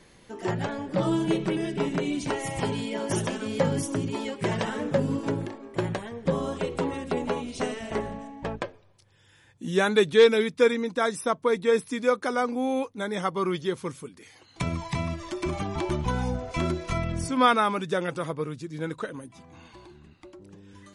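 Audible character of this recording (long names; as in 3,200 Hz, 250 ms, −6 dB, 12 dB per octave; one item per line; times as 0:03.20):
background noise floor −58 dBFS
spectral slope −4.5 dB per octave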